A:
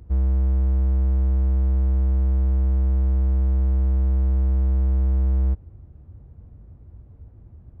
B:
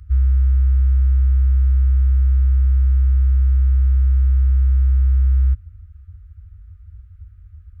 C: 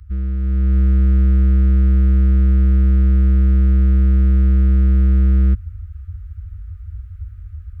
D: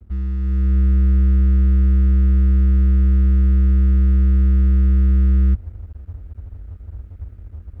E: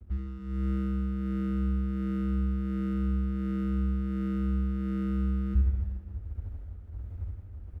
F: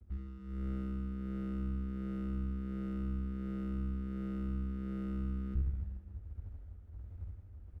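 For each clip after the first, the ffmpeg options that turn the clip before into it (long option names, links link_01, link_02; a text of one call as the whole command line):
ffmpeg -i in.wav -af "afftfilt=real='re*(1-between(b*sr/4096,100,1200))':imag='im*(1-between(b*sr/4096,100,1200))':win_size=4096:overlap=0.75,volume=5dB" out.wav
ffmpeg -i in.wav -filter_complex "[0:a]acrossover=split=370[link_01][link_02];[link_01]asoftclip=type=tanh:threshold=-19.5dB[link_03];[link_03][link_02]amix=inputs=2:normalize=0,dynaudnorm=framelen=390:gausssize=3:maxgain=9dB" out.wav
ffmpeg -i in.wav -filter_complex "[0:a]aeval=exprs='sgn(val(0))*max(abs(val(0))-0.00631,0)':channel_layout=same,acrossover=split=200[link_01][link_02];[link_02]acompressor=threshold=-28dB:ratio=6[link_03];[link_01][link_03]amix=inputs=2:normalize=0,volume=-1dB" out.wav
ffmpeg -i in.wav -af "tremolo=f=1.4:d=0.52,aecho=1:1:70|161|279.3|433.1|633:0.631|0.398|0.251|0.158|0.1,volume=-5dB" out.wav
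ffmpeg -i in.wav -af "aeval=exprs='(tanh(10*val(0)+0.5)-tanh(0.5))/10':channel_layout=same,volume=-6dB" out.wav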